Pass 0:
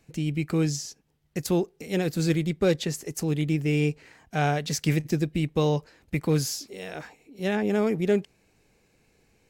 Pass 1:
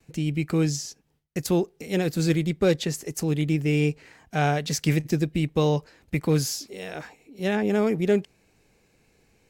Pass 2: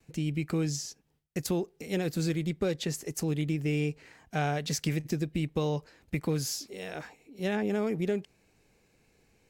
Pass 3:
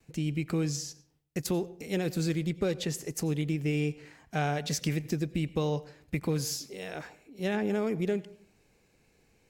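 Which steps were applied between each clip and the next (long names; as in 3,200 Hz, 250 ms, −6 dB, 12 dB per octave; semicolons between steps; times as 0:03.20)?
noise gate with hold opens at −58 dBFS; level +1.5 dB
downward compressor, threshold −22 dBFS, peak gain reduction 6.5 dB; level −3.5 dB
convolution reverb RT60 0.50 s, pre-delay 82 ms, DRR 18 dB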